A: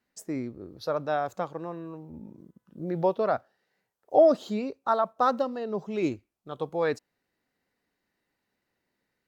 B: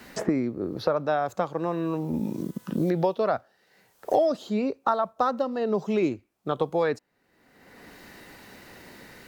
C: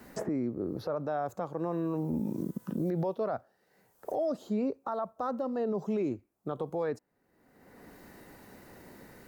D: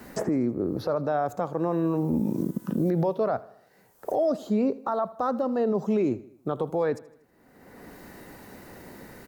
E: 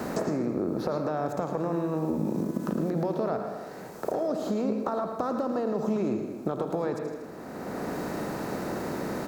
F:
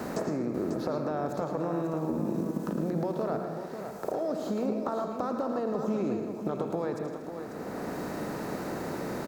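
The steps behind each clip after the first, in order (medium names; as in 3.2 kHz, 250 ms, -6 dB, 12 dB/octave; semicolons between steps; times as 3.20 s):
three bands compressed up and down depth 100%; trim +2.5 dB
peaking EQ 3.3 kHz -11 dB 2.2 oct; peak limiter -22 dBFS, peak gain reduction 10 dB; trim -2 dB
feedback delay 79 ms, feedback 52%, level -20 dB; trim +6.5 dB
spectral levelling over time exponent 0.6; compression, threshold -26 dBFS, peak gain reduction 8.5 dB; on a send at -6 dB: reverberation RT60 0.65 s, pre-delay 106 ms
delay 543 ms -8.5 dB; trim -2.5 dB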